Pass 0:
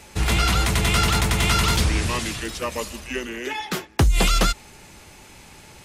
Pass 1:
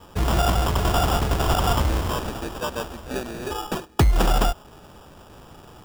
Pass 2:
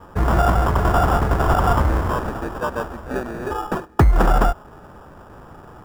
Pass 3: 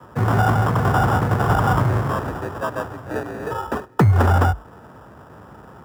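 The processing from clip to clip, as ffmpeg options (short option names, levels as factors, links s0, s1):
-af "adynamicequalizer=threshold=0.0126:dfrequency=220:dqfactor=0.78:tfrequency=220:tqfactor=0.78:attack=5:release=100:ratio=0.375:range=3.5:mode=cutabove:tftype=bell,acrusher=samples=21:mix=1:aa=0.000001"
-af "highshelf=f=2200:t=q:w=1.5:g=-10,volume=1.5"
-af "afreqshift=50,volume=0.891"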